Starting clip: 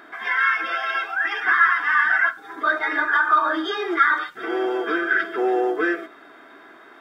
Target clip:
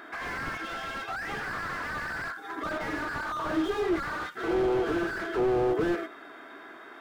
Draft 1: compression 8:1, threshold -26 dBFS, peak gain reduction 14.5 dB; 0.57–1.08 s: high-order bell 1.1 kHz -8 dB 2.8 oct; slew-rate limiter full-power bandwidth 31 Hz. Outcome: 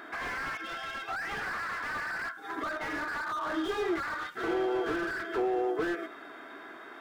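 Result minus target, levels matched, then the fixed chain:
compression: peak gain reduction +8 dB
compression 8:1, threshold -17 dBFS, peak gain reduction 6.5 dB; 0.57–1.08 s: high-order bell 1.1 kHz -8 dB 2.8 oct; slew-rate limiter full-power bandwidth 31 Hz

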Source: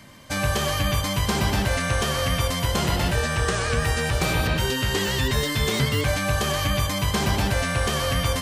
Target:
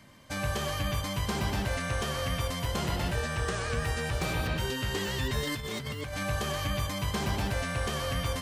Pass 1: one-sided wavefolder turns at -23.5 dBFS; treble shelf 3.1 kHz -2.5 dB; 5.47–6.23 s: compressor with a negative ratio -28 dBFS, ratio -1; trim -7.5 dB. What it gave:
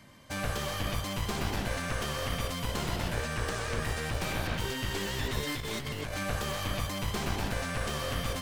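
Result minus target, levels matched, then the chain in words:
one-sided wavefolder: distortion +23 dB
one-sided wavefolder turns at -14.5 dBFS; treble shelf 3.1 kHz -2.5 dB; 5.47–6.23 s: compressor with a negative ratio -28 dBFS, ratio -1; trim -7.5 dB

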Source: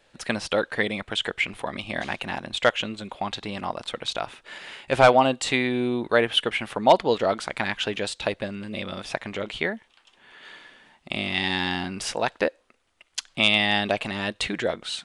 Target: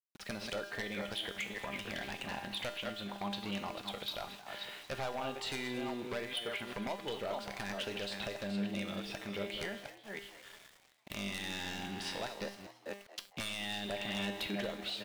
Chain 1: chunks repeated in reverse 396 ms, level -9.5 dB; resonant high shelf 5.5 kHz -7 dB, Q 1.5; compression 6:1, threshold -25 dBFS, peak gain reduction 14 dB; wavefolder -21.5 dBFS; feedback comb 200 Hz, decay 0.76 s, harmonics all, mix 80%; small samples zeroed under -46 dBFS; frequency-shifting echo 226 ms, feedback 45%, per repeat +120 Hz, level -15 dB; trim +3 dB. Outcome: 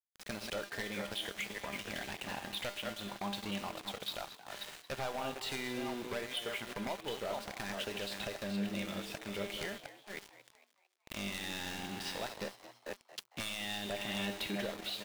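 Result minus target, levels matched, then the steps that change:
small samples zeroed: distortion +11 dB
change: small samples zeroed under -54.5 dBFS

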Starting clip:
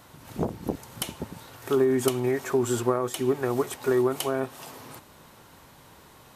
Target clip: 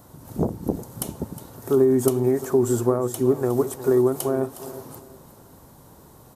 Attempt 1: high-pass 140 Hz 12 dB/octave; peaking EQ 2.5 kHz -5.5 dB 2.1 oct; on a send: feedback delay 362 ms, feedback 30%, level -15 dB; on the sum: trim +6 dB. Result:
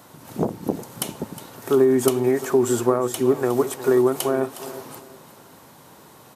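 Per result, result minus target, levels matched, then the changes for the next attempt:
2 kHz band +7.0 dB; 125 Hz band -5.0 dB
change: peaking EQ 2.5 kHz -17 dB 2.1 oct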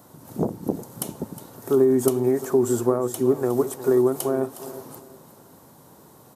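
125 Hz band -3.5 dB
remove: high-pass 140 Hz 12 dB/octave

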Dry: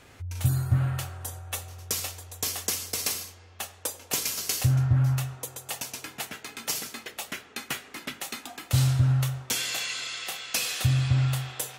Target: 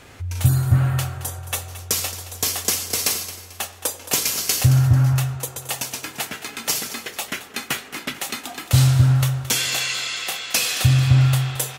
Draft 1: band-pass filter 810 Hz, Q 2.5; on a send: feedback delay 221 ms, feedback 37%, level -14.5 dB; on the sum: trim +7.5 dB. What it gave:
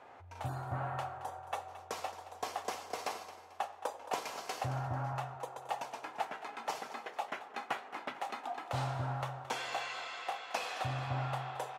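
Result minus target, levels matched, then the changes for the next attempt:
1 kHz band +16.0 dB
remove: band-pass filter 810 Hz, Q 2.5

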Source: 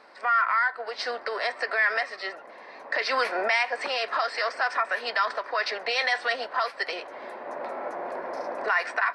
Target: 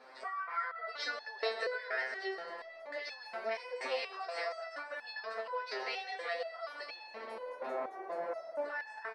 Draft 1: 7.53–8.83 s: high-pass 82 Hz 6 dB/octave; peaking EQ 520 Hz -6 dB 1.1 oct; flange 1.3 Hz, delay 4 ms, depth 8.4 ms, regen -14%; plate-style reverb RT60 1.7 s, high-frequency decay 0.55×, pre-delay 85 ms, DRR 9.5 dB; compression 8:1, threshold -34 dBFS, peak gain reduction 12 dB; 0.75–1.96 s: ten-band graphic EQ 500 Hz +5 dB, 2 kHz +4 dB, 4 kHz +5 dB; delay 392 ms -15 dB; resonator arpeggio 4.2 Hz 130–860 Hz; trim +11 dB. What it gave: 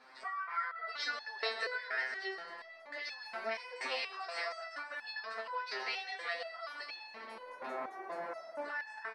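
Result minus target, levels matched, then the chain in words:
500 Hz band -5.0 dB
7.53–8.83 s: high-pass 82 Hz 6 dB/octave; peaking EQ 520 Hz +4 dB 1.1 oct; flange 1.3 Hz, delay 4 ms, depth 8.4 ms, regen -14%; plate-style reverb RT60 1.7 s, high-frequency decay 0.55×, pre-delay 85 ms, DRR 9.5 dB; compression 8:1, threshold -34 dBFS, peak gain reduction 13 dB; 0.75–1.96 s: ten-band graphic EQ 500 Hz +5 dB, 2 kHz +4 dB, 4 kHz +5 dB; delay 392 ms -15 dB; resonator arpeggio 4.2 Hz 130–860 Hz; trim +11 dB

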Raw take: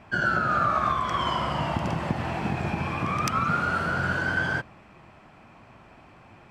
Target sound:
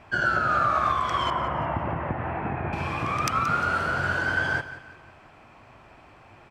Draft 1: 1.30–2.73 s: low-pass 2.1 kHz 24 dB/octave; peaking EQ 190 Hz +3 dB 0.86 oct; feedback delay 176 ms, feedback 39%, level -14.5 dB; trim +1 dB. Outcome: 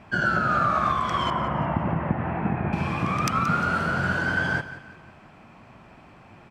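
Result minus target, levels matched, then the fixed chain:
250 Hz band +6.0 dB
1.30–2.73 s: low-pass 2.1 kHz 24 dB/octave; peaking EQ 190 Hz -7.5 dB 0.86 oct; feedback delay 176 ms, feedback 39%, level -14.5 dB; trim +1 dB

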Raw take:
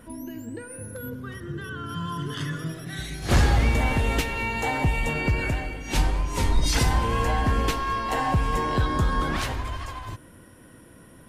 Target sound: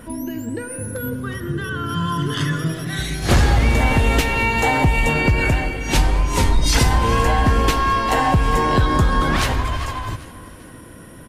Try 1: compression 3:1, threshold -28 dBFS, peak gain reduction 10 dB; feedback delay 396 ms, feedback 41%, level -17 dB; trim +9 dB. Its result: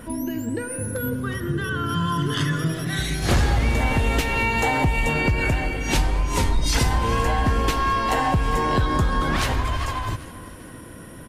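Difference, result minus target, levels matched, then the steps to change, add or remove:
compression: peak gain reduction +4.5 dB
change: compression 3:1, threshold -21 dBFS, peak gain reduction 5.5 dB

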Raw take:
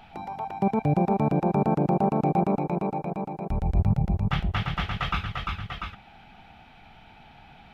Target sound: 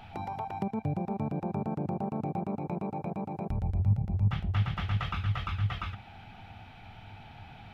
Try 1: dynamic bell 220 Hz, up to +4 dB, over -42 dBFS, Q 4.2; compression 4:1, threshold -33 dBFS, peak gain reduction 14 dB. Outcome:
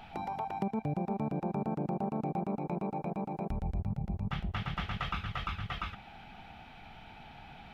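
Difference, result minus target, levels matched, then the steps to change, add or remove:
125 Hz band -4.0 dB
add after compression: peaking EQ 100 Hz +14.5 dB 0.46 oct

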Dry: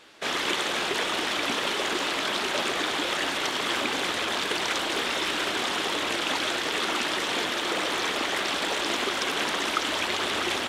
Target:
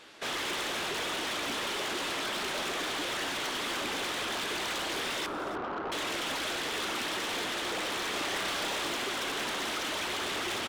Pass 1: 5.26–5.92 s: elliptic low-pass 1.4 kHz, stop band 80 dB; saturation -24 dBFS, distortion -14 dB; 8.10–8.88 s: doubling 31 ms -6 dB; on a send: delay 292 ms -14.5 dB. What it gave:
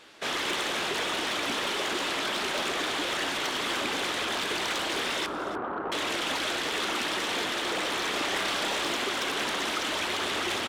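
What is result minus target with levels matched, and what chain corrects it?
saturation: distortion -6 dB
5.26–5.92 s: elliptic low-pass 1.4 kHz, stop band 80 dB; saturation -31 dBFS, distortion -8 dB; 8.10–8.88 s: doubling 31 ms -6 dB; on a send: delay 292 ms -14.5 dB

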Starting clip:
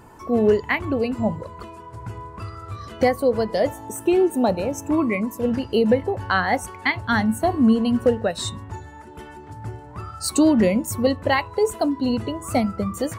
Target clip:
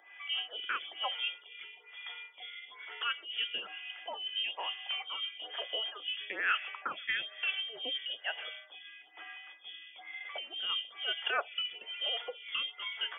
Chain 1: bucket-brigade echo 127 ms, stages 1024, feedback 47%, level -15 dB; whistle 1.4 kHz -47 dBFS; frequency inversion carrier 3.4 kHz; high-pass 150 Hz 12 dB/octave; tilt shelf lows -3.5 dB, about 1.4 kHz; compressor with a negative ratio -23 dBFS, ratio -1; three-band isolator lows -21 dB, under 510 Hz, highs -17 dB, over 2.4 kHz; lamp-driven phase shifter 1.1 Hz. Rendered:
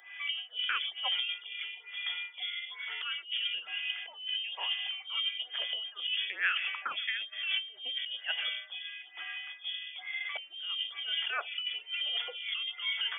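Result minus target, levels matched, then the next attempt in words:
1 kHz band -5.0 dB
bucket-brigade echo 127 ms, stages 1024, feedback 47%, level -15 dB; whistle 1.4 kHz -47 dBFS; frequency inversion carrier 3.4 kHz; high-pass 150 Hz 12 dB/octave; tilt shelf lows +6.5 dB, about 1.4 kHz; compressor with a negative ratio -23 dBFS, ratio -1; three-band isolator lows -21 dB, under 510 Hz, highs -17 dB, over 2.4 kHz; lamp-driven phase shifter 1.1 Hz

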